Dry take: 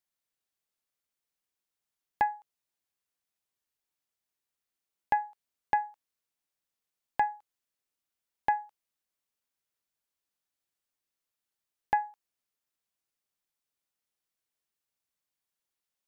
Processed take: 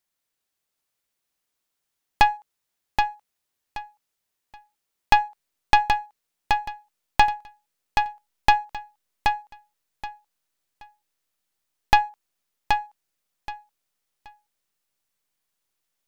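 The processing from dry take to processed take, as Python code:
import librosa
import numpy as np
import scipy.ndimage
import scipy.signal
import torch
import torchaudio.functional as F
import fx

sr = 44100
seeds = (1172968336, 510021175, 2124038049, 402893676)

p1 = fx.tracing_dist(x, sr, depth_ms=0.3)
p2 = fx.backlash(p1, sr, play_db=-41.0)
p3 = p1 + F.gain(torch.from_numpy(p2), -6.0).numpy()
p4 = fx.echo_feedback(p3, sr, ms=776, feedback_pct=22, wet_db=-5)
y = F.gain(torch.from_numpy(p4), 6.5).numpy()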